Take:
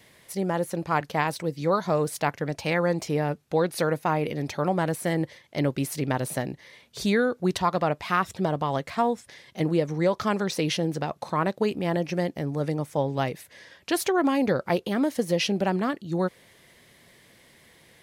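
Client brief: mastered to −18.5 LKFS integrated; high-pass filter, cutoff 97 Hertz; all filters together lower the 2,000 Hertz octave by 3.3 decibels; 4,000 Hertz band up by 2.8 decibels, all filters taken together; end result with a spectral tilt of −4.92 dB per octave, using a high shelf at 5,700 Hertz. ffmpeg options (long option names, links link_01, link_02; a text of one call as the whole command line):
ffmpeg -i in.wav -af "highpass=97,equalizer=frequency=2000:width_type=o:gain=-5.5,equalizer=frequency=4000:width_type=o:gain=8,highshelf=frequency=5700:gain=-7,volume=8.5dB" out.wav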